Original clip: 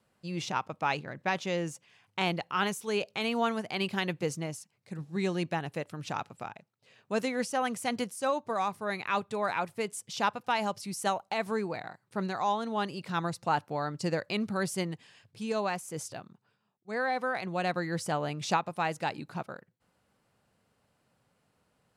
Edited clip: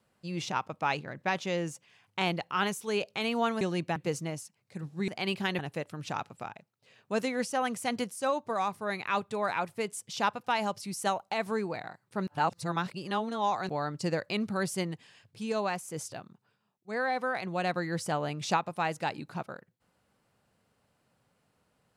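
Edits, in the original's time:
0:03.61–0:04.12: swap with 0:05.24–0:05.59
0:12.27–0:13.69: reverse

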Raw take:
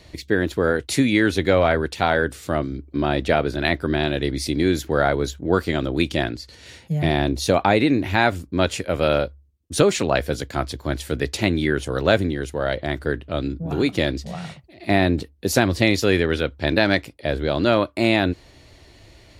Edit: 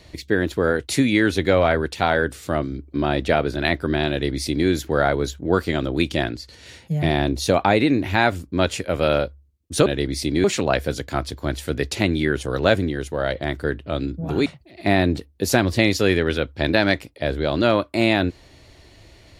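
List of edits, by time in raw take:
0:04.10–0:04.68: duplicate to 0:09.86
0:13.88–0:14.49: remove

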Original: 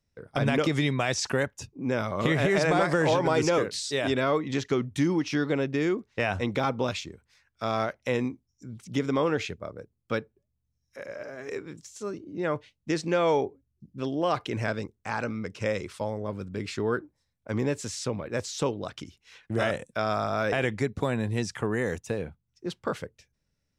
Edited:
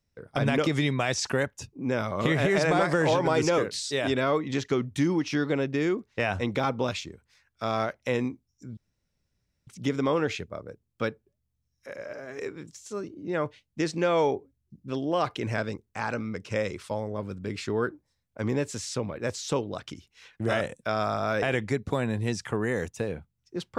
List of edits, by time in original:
0:08.77: splice in room tone 0.90 s

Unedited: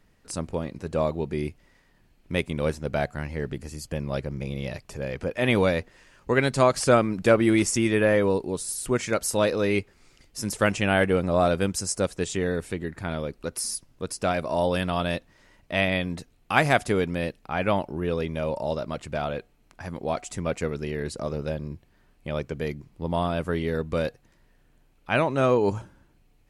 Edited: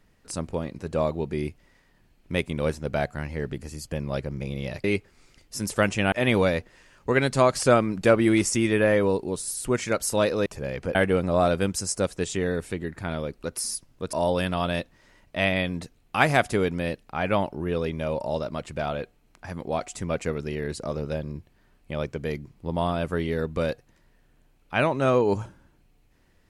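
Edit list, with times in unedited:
0:04.84–0:05.33: swap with 0:09.67–0:10.95
0:14.13–0:14.49: remove

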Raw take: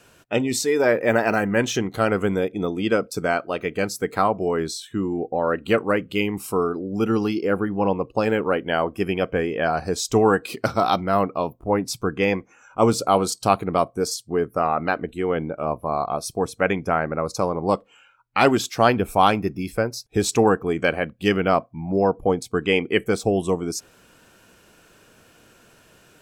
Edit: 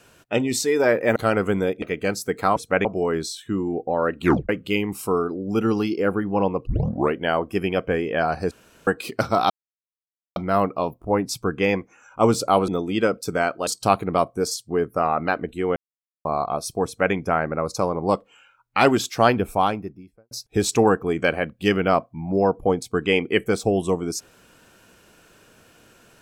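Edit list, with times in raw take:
0:01.16–0:01.91: remove
0:02.57–0:03.56: move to 0:13.27
0:05.67: tape stop 0.27 s
0:08.12: tape start 0.48 s
0:09.96–0:10.32: fill with room tone
0:10.95: splice in silence 0.86 s
0:15.36–0:15.85: silence
0:16.45–0:16.74: duplicate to 0:04.30
0:18.84–0:19.91: fade out and dull

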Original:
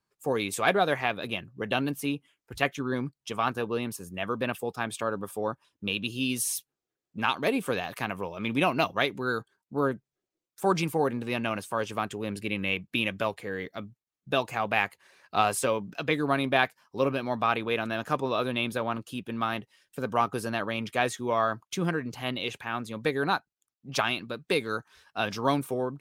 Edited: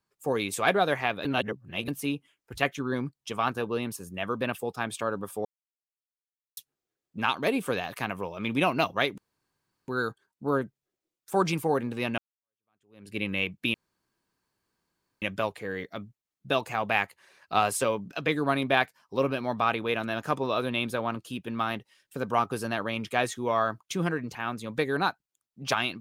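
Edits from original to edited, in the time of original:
0:01.25–0:01.88: reverse
0:05.45–0:06.57: silence
0:09.18: splice in room tone 0.70 s
0:11.48–0:12.47: fade in exponential
0:13.04: splice in room tone 1.48 s
0:22.17–0:22.62: remove

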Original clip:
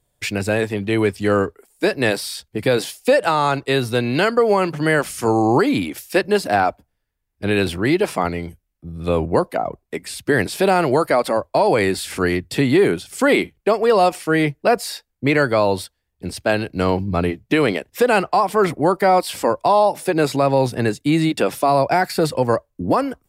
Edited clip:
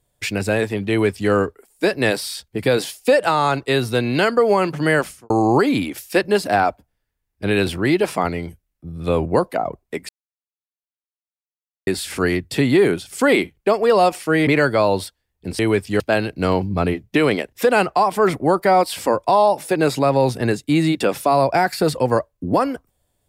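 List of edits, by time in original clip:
0:00.90–0:01.31: duplicate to 0:16.37
0:04.99–0:05.30: fade out and dull
0:10.09–0:11.87: silence
0:14.47–0:15.25: remove

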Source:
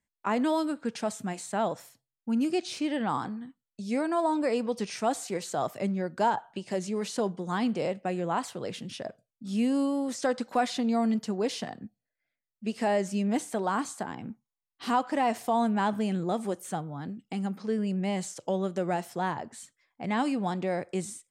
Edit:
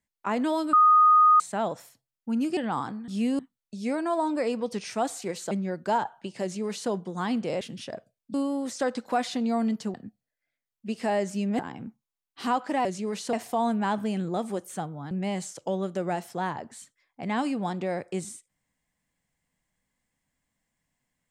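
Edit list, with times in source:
0:00.73–0:01.40: beep over 1,240 Hz −14 dBFS
0:02.57–0:02.94: remove
0:05.57–0:05.83: remove
0:06.74–0:07.22: duplicate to 0:15.28
0:07.93–0:08.73: remove
0:09.46–0:09.77: move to 0:03.45
0:11.37–0:11.72: remove
0:13.37–0:14.02: remove
0:17.06–0:17.92: remove

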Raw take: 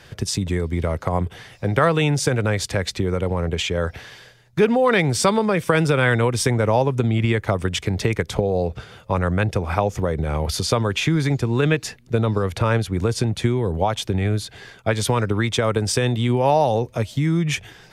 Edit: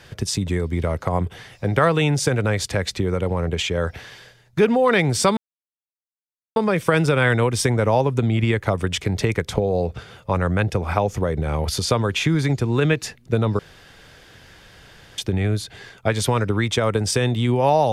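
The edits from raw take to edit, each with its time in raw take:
0:05.37: splice in silence 1.19 s
0:12.40–0:13.99: fill with room tone

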